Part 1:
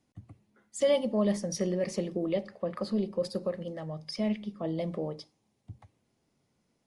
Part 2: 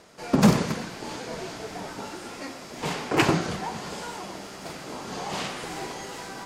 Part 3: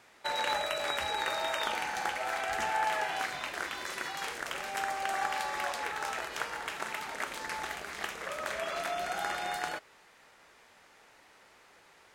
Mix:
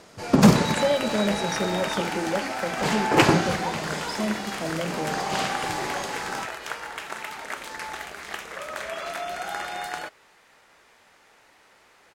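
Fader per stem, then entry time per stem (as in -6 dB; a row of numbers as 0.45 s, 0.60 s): +2.0 dB, +3.0 dB, +2.5 dB; 0.00 s, 0.00 s, 0.30 s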